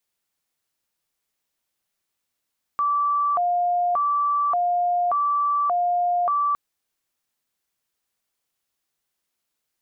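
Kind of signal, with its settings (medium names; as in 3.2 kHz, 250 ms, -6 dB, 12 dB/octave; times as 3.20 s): siren hi-lo 707–1160 Hz 0.86 per s sine -18.5 dBFS 3.76 s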